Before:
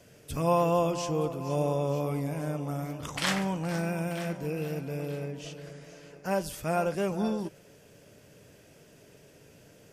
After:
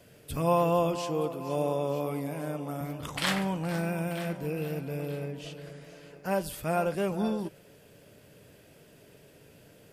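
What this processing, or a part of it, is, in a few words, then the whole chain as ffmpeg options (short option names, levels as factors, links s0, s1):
exciter from parts: -filter_complex "[0:a]asettb=1/sr,asplit=3[s0][s1][s2];[s0]atrim=end=0.954[s3];[s1]atrim=start=0.95:end=2.81,asetpts=PTS-STARTPTS,afade=t=in:d=0.004:c=qsin,afade=t=out:st=1.856:d=0.004:c=qsin,highpass=180[s4];[s2]atrim=start=2.806[s5];[s3][s4]acrossfade=d=0.004:c1=hsin:c2=qsin[s6];[s6][s5]acrossfade=d=0.004:c1=qsin:c2=hsin,asplit=2[s7][s8];[s8]highpass=f=2200:w=0.5412,highpass=f=2200:w=1.3066,asoftclip=type=tanh:threshold=0.075,highpass=f=4600:w=0.5412,highpass=f=4600:w=1.3066,volume=0.531[s9];[s7][s9]amix=inputs=2:normalize=0"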